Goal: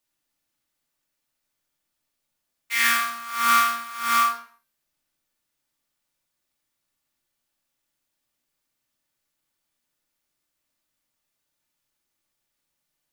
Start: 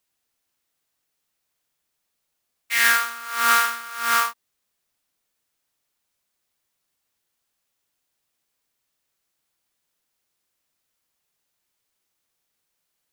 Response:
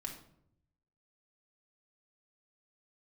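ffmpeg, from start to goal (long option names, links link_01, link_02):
-filter_complex "[0:a]bandreject=frequency=390.6:width_type=h:width=4,bandreject=frequency=781.2:width_type=h:width=4,bandreject=frequency=1171.8:width_type=h:width=4,bandreject=frequency=1562.4:width_type=h:width=4,bandreject=frequency=1953:width_type=h:width=4,bandreject=frequency=2343.6:width_type=h:width=4,bandreject=frequency=2734.2:width_type=h:width=4,bandreject=frequency=3124.8:width_type=h:width=4,bandreject=frequency=3515.4:width_type=h:width=4,bandreject=frequency=3906:width_type=h:width=4,bandreject=frequency=4296.6:width_type=h:width=4,bandreject=frequency=4687.2:width_type=h:width=4,bandreject=frequency=5077.8:width_type=h:width=4,bandreject=frequency=5468.4:width_type=h:width=4,bandreject=frequency=5859:width_type=h:width=4,bandreject=frequency=6249.6:width_type=h:width=4,bandreject=frequency=6640.2:width_type=h:width=4,bandreject=frequency=7030.8:width_type=h:width=4,bandreject=frequency=7421.4:width_type=h:width=4,bandreject=frequency=7812:width_type=h:width=4,bandreject=frequency=8202.6:width_type=h:width=4,bandreject=frequency=8593.2:width_type=h:width=4,bandreject=frequency=8983.8:width_type=h:width=4,bandreject=frequency=9374.4:width_type=h:width=4,bandreject=frequency=9765:width_type=h:width=4,bandreject=frequency=10155.6:width_type=h:width=4,bandreject=frequency=10546.2:width_type=h:width=4,bandreject=frequency=10936.8:width_type=h:width=4,bandreject=frequency=11327.4:width_type=h:width=4,bandreject=frequency=11718:width_type=h:width=4,bandreject=frequency=12108.6:width_type=h:width=4,bandreject=frequency=12499.2:width_type=h:width=4,bandreject=frequency=12889.8:width_type=h:width=4,bandreject=frequency=13280.4:width_type=h:width=4,bandreject=frequency=13671:width_type=h:width=4,bandreject=frequency=14061.6:width_type=h:width=4,bandreject=frequency=14452.2:width_type=h:width=4,bandreject=frequency=14842.8:width_type=h:width=4[link_01];[1:a]atrim=start_sample=2205,afade=type=out:start_time=0.37:duration=0.01,atrim=end_sample=16758[link_02];[link_01][link_02]afir=irnorm=-1:irlink=0"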